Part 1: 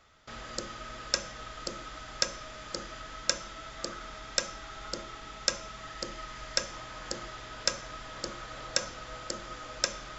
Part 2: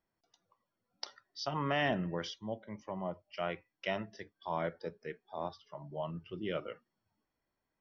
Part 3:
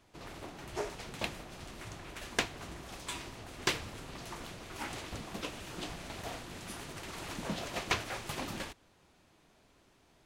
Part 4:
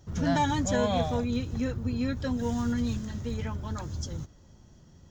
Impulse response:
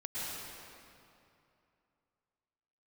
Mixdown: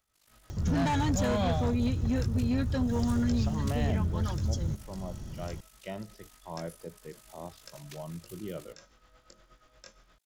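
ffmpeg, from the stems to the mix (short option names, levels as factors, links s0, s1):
-filter_complex "[0:a]flanger=delay=18.5:depth=3.8:speed=0.26,tremolo=f=8.5:d=0.61,volume=0.168[s0];[1:a]equalizer=f=2000:w=0.49:g=-8,adelay=2000,volume=0.794[s1];[2:a]aderivative,tremolo=f=50:d=0.889,highshelf=f=8400:g=8.5,volume=0.422[s2];[3:a]acompressor=mode=upward:threshold=0.0178:ratio=2.5,aeval=exprs='0.168*(cos(1*acos(clip(val(0)/0.168,-1,1)))-cos(1*PI/2))+0.0335*(cos(5*acos(clip(val(0)/0.168,-1,1)))-cos(5*PI/2))':c=same,adelay=500,volume=0.501[s3];[s0][s1][s2][s3]amix=inputs=4:normalize=0,lowshelf=f=180:g=7.5"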